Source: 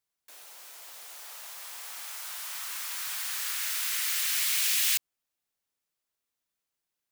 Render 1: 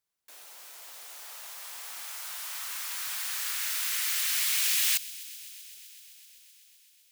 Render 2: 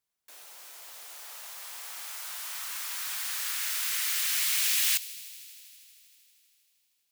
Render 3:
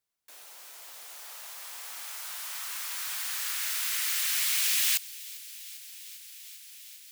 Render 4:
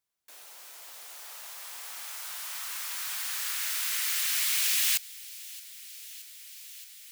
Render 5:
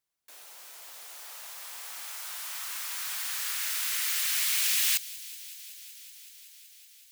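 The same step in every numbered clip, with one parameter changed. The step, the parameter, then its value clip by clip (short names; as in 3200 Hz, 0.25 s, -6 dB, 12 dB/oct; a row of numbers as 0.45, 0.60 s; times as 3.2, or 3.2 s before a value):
thin delay, time: 128, 79, 398, 623, 188 ms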